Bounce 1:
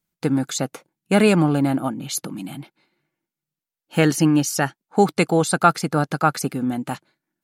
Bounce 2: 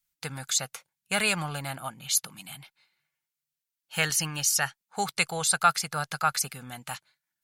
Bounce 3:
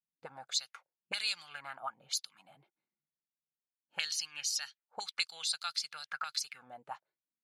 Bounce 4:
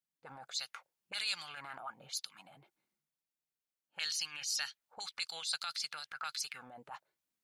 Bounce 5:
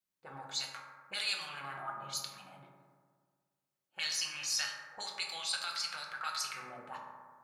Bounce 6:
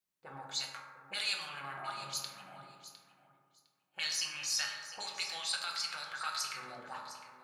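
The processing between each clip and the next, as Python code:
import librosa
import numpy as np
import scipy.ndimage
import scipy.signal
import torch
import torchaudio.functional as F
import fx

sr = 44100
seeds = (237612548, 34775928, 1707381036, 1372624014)

y1 = fx.tone_stack(x, sr, knobs='10-0-10')
y1 = y1 * librosa.db_to_amplitude(2.5)
y2 = fx.auto_wah(y1, sr, base_hz=230.0, top_hz=4300.0, q=3.2, full_db=-25.5, direction='up')
y3 = fx.transient(y2, sr, attack_db=-8, sustain_db=6)
y4 = fx.rev_fdn(y3, sr, rt60_s=1.7, lf_ratio=1.05, hf_ratio=0.3, size_ms=16.0, drr_db=-2.0)
y5 = fx.echo_feedback(y4, sr, ms=707, feedback_pct=17, wet_db=-14.0)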